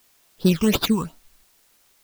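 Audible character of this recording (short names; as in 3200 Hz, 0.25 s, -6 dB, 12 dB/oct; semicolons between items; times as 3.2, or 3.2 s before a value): aliases and images of a low sample rate 8400 Hz, jitter 0%; phasing stages 8, 2.8 Hz, lowest notch 540–2300 Hz; a quantiser's noise floor 10-bit, dither triangular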